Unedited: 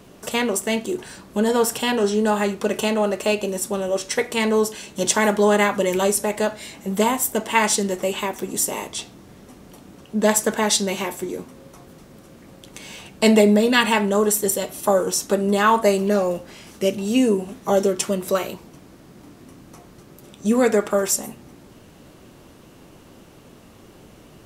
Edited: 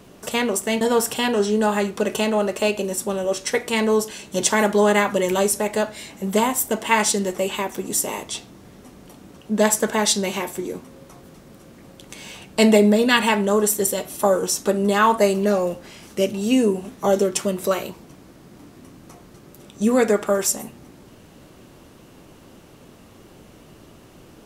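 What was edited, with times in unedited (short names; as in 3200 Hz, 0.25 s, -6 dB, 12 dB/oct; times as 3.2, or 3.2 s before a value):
0.81–1.45 cut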